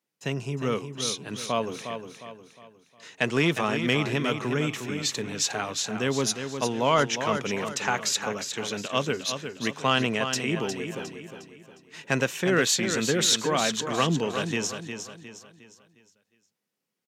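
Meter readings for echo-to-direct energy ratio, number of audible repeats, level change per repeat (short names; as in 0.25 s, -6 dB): -7.0 dB, 4, -8.0 dB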